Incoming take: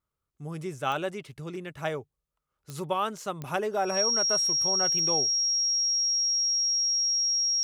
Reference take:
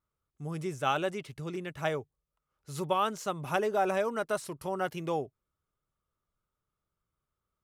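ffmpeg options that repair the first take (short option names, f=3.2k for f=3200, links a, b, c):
-af "adeclick=t=4,bandreject=f=5.6k:w=30"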